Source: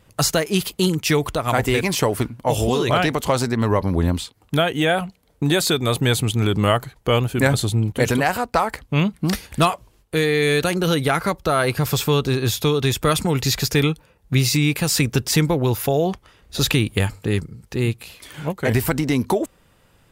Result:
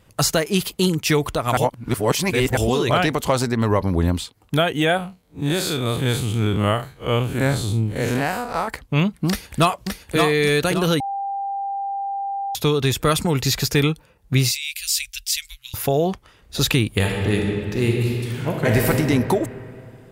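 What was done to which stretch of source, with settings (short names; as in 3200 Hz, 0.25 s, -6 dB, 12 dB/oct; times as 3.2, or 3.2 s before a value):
1.57–2.57 reverse
4.97–8.68 time blur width 0.104 s
9.29–10.16 echo throw 0.57 s, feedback 40%, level -4 dB
11–12.55 bleep 793 Hz -23 dBFS
14.51–15.74 inverse Chebyshev band-stop 180–600 Hz, stop band 80 dB
16.89–18.89 reverb throw, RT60 2.7 s, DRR -0.5 dB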